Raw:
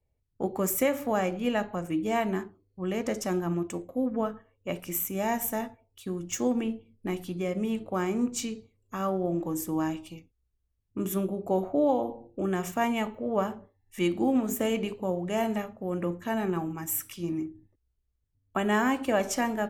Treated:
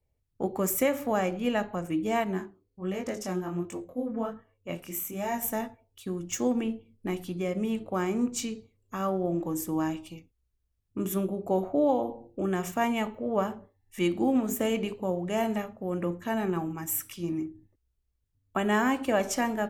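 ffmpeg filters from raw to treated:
-filter_complex "[0:a]asettb=1/sr,asplit=3[a][b][c];[a]atrim=end=2.244[d];[b]atrim=start=2.24:end=5.43,asetpts=PTS-STARTPTS,afade=t=in:d=0.004:c=qsin,afade=t=out:st=3.186:d=0.004:c=qsin,flanger=delay=20:depth=7:speed=1.3[e];[c]atrim=start=5.426[f];[d][e]acrossfade=d=0.004:c1=hsin:c2=qsin[g];[g][f]acrossfade=d=0.004:c1=qsin:c2=hsin"

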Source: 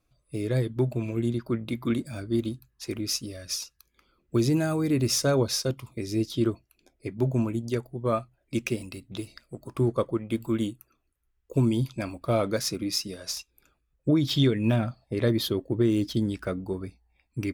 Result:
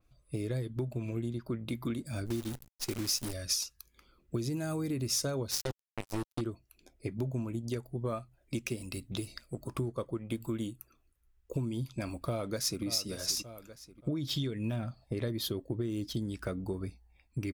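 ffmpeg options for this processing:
-filter_complex "[0:a]asplit=3[a][b][c];[a]afade=t=out:st=2.25:d=0.02[d];[b]acrusher=bits=7:dc=4:mix=0:aa=0.000001,afade=t=in:st=2.25:d=0.02,afade=t=out:st=3.32:d=0.02[e];[c]afade=t=in:st=3.32:d=0.02[f];[d][e][f]amix=inputs=3:normalize=0,asettb=1/sr,asplit=3[g][h][i];[g]atrim=end=5.514[j];[h]atrim=start=5.51:end=6.41,asetpts=PTS-STARTPTS,afade=t=in:d=0.004:c=qsin,afade=t=out:st=0.896:d=0.004:c=qsin,acrusher=bits=3:mix=0:aa=0.5[k];[i]atrim=start=6.406[l];[j][k]acrossfade=d=0.004:c1=hsin:c2=qsin[m];[m][l]acrossfade=d=0.004:c1=qsin:c2=hsin,asplit=2[n][o];[o]afade=t=in:st=12.11:d=0.01,afade=t=out:st=12.84:d=0.01,aecho=0:1:580|1160|1740:0.158489|0.0554713|0.0194149[p];[n][p]amix=inputs=2:normalize=0,lowshelf=f=96:g=6.5,acompressor=threshold=-32dB:ratio=6,adynamicequalizer=threshold=0.00224:dfrequency=4200:dqfactor=0.7:tfrequency=4200:tqfactor=0.7:attack=5:release=100:ratio=0.375:range=3:mode=boostabove:tftype=highshelf"

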